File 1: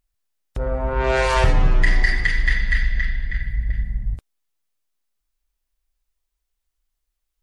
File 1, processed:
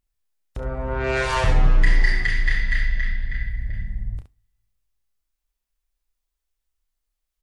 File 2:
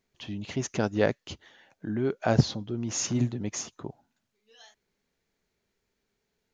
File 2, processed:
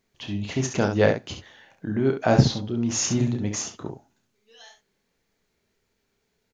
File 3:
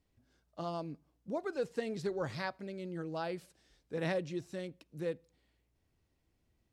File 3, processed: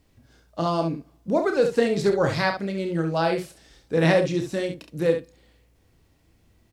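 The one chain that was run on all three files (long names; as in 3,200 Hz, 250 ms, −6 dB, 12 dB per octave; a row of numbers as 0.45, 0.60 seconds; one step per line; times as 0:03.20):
on a send: ambience of single reflections 30 ms −7.5 dB, 68 ms −7.5 dB
on the sum: coupled-rooms reverb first 0.32 s, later 2 s, from −27 dB, DRR 18 dB
loudness normalisation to −24 LKFS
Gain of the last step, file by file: −3.5, +4.0, +14.0 decibels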